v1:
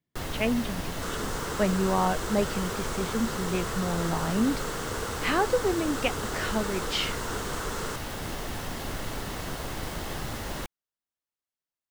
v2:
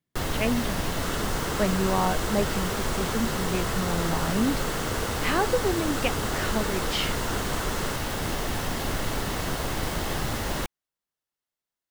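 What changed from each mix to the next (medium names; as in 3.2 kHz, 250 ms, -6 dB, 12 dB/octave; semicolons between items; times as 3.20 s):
first sound +5.5 dB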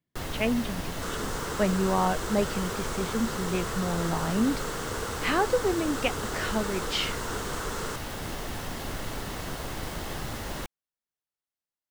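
first sound -6.0 dB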